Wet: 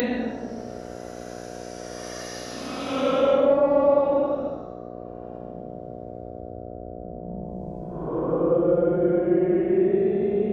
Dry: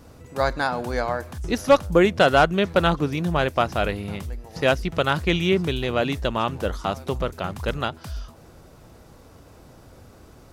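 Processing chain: treble ducked by the level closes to 450 Hz, closed at -16.5 dBFS; Paulstretch 20×, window 0.05 s, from 1.54; buzz 60 Hz, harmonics 12, -32 dBFS -2 dB/oct; RIAA curve recording

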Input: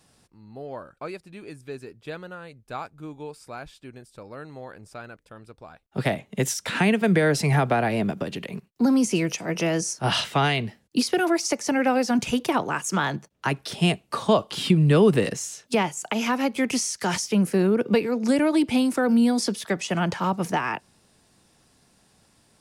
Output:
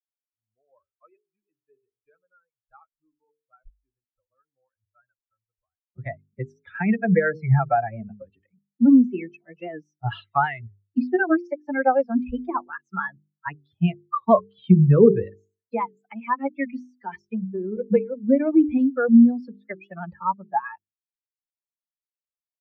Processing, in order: per-bin expansion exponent 3; LPF 1700 Hz 24 dB/oct; notches 50/100/150/200/250/300/350/400/450 Hz; 16.88–17.77 compressor, threshold -35 dBFS, peak gain reduction 10.5 dB; record warp 78 rpm, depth 100 cents; gain +9 dB

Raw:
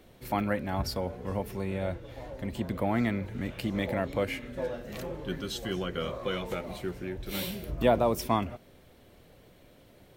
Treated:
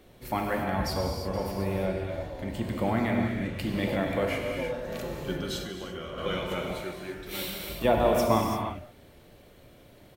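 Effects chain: 3.16–3.56 LPF 12000 Hz; non-linear reverb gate 0.37 s flat, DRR 0 dB; 0.94–1.45 echo throw 0.39 s, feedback 20%, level -8 dB; 5.61–6.18 compressor 5:1, threshold -35 dBFS, peak gain reduction 8.5 dB; 6.82–7.85 low shelf 360 Hz -9 dB

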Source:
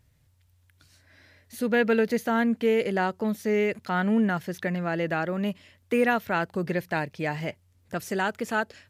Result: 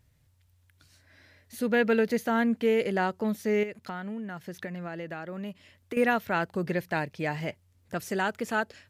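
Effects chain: 3.63–5.97 compressor 6:1, threshold -33 dBFS, peak gain reduction 13 dB; gain -1.5 dB

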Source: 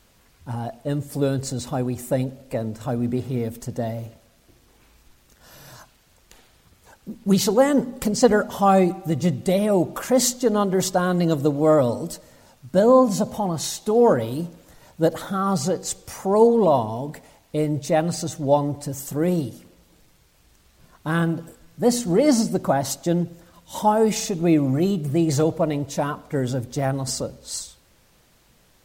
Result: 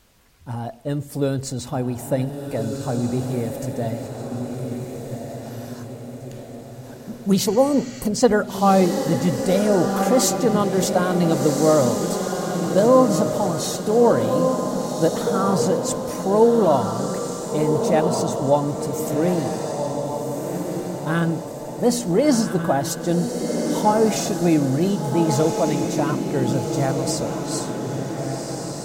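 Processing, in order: diffused feedback echo 1.485 s, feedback 51%, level -4.5 dB; spectral repair 7.48–8.03, 1200–7900 Hz after

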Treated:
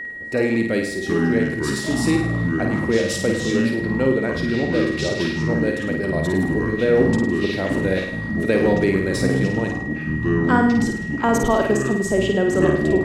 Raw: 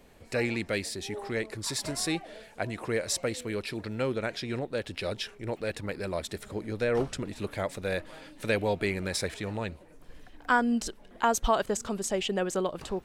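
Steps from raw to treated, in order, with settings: bell 290 Hz +13 dB 2 oct; echoes that change speed 0.611 s, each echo -6 st, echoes 2; whine 1900 Hz -27 dBFS; flutter echo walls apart 9 m, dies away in 0.63 s; mismatched tape noise reduction decoder only

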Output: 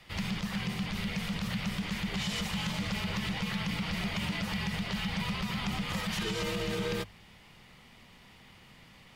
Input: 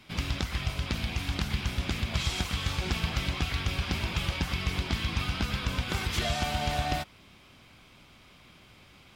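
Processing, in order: frequency shift -260 Hz; notches 50/100/150 Hz; limiter -24 dBFS, peak gain reduction 10 dB

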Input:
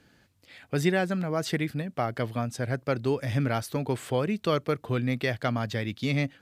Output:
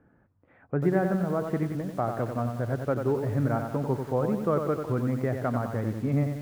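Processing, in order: LPF 1400 Hz 24 dB/oct; lo-fi delay 92 ms, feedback 55%, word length 8-bit, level -6 dB

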